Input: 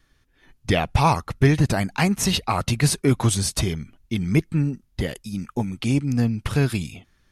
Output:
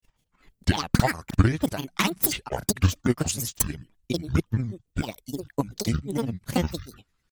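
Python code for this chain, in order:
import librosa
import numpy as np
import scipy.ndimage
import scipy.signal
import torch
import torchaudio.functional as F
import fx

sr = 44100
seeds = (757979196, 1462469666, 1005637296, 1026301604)

y = fx.granulator(x, sr, seeds[0], grain_ms=100.0, per_s=20.0, spray_ms=36.0, spread_st=12)
y = fx.high_shelf(y, sr, hz=6000.0, db=8.0)
y = fx.transient(y, sr, attack_db=10, sustain_db=-2)
y = y * librosa.db_to_amplitude(-8.5)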